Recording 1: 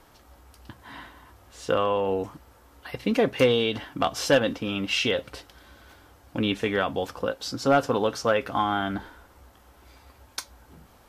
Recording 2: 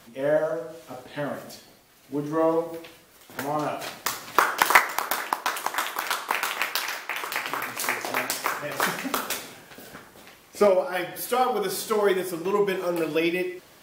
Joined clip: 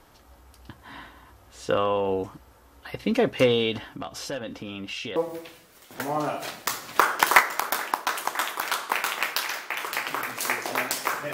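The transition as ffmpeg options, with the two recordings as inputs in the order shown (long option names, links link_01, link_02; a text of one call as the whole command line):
ffmpeg -i cue0.wav -i cue1.wav -filter_complex "[0:a]asettb=1/sr,asplit=3[link_01][link_02][link_03];[link_01]atrim=end=3.784[link_04];[link_02]atrim=start=3.78:end=5.16,asetpts=PTS-STARTPTS,afade=type=in:duration=0.004:curve=qsin,afade=type=out:start_time=1.376:duration=0.004:curve=qsin,acompressor=threshold=-35dB:ratio=2.5:attack=3.2:release=140:knee=1:detection=peak[link_05];[link_03]atrim=start=5.156[link_06];[link_04][link_05]acrossfade=duration=0.004:curve1=hsin:curve2=qsin[link_07];[link_07][link_06]acrossfade=duration=0.004:curve1=qsin:curve2=hsin,apad=whole_dur=11.33,atrim=end=11.33,atrim=end=5.162[link_08];[1:a]atrim=start=2.548:end=8.72[link_09];[link_08][link_09]acrossfade=duration=0.004:curve1=hsin:curve2=hsin" out.wav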